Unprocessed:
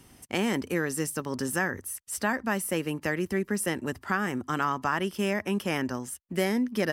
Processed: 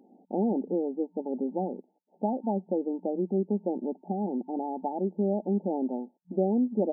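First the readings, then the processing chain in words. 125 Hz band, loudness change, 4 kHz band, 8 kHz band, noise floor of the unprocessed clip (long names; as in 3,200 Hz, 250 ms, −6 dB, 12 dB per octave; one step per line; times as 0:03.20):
can't be measured, −1.0 dB, below −40 dB, below −40 dB, −58 dBFS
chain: brick-wall band-pass 180–900 Hz
level +1.5 dB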